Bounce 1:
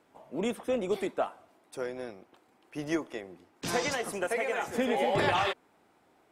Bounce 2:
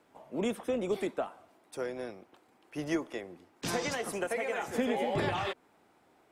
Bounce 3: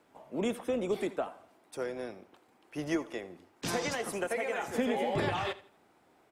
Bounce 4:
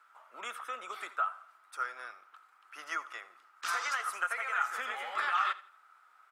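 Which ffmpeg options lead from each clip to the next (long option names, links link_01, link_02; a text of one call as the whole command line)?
ffmpeg -i in.wav -filter_complex "[0:a]acrossover=split=360[link_01][link_02];[link_02]acompressor=threshold=-31dB:ratio=6[link_03];[link_01][link_03]amix=inputs=2:normalize=0" out.wav
ffmpeg -i in.wav -af "aecho=1:1:83|166|249:0.126|0.0378|0.0113" out.wav
ffmpeg -i in.wav -af "highpass=frequency=1300:width_type=q:width=11,volume=-3dB" out.wav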